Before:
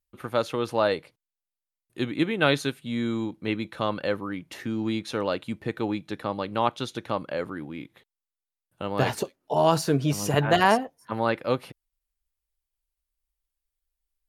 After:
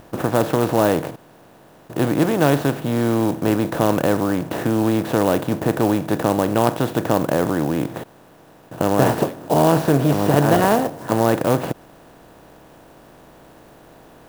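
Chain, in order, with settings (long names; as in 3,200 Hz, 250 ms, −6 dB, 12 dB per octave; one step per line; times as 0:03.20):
compressor on every frequency bin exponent 0.4
tilt shelving filter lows +6.5 dB
converter with an unsteady clock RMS 0.035 ms
level −2 dB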